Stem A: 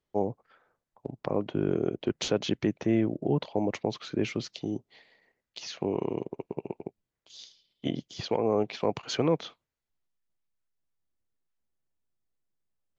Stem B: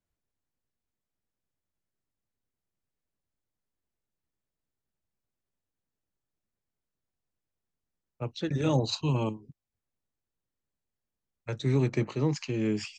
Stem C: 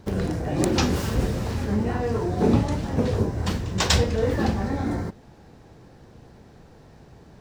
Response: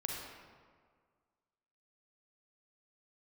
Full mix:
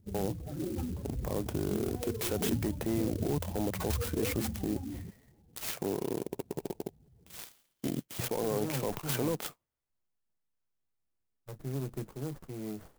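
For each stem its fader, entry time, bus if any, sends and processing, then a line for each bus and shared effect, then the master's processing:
0.0 dB, 0.00 s, no send, waveshaping leveller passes 1; peak limiter -24 dBFS, peak gain reduction 10.5 dB
-10.5 dB, 0.00 s, no send, sliding maximum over 17 samples
-13.5 dB, 0.00 s, no send, spectral contrast enhancement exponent 2.1; auto duck -22 dB, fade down 0.75 s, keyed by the second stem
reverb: none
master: sampling jitter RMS 0.076 ms

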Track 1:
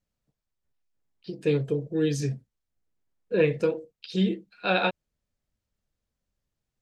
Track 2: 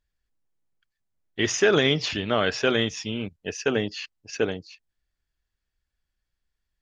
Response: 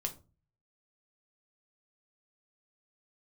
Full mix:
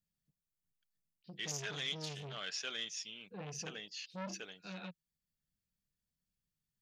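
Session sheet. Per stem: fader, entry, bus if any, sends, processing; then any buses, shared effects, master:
-11.0 dB, 0.00 s, no send, peaking EQ 670 Hz -7 dB 1.9 oct; auto duck -9 dB, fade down 0.35 s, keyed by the second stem
-4.5 dB, 0.00 s, no send, differentiator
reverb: none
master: peaking EQ 170 Hz +11.5 dB 0.69 oct; transformer saturation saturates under 2.8 kHz

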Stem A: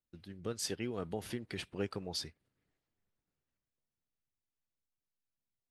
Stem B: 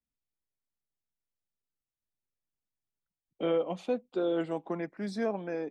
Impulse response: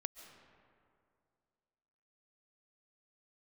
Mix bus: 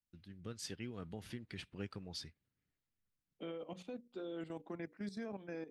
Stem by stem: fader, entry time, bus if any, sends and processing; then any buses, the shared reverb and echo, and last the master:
-3.0 dB, 0.00 s, no send, low-pass 4 kHz 6 dB/octave; peaking EQ 390 Hz -3.5 dB
-3.0 dB, 0.00 s, no send, hum notches 60/120/180/240/300/360/420/480/540 Hz; level held to a coarse grid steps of 12 dB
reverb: none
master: peaking EQ 710 Hz -7.5 dB 1.8 oct

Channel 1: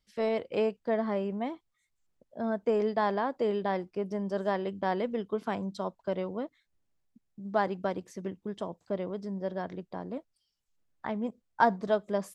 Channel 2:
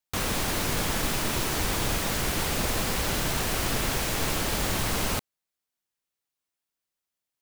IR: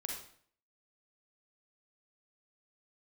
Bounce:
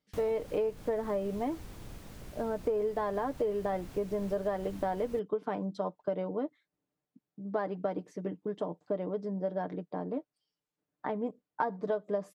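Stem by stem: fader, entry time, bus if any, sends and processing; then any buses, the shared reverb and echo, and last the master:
-0.5 dB, 0.00 s, no send, high-pass 280 Hz 12 dB/octave; tilt EQ -3.5 dB/octave; comb 6.7 ms, depth 55%
-17.0 dB, 0.00 s, no send, bass shelf 500 Hz +11.5 dB; auto duck -10 dB, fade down 0.35 s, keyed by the first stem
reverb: none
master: compression 6:1, threshold -28 dBFS, peak gain reduction 12 dB

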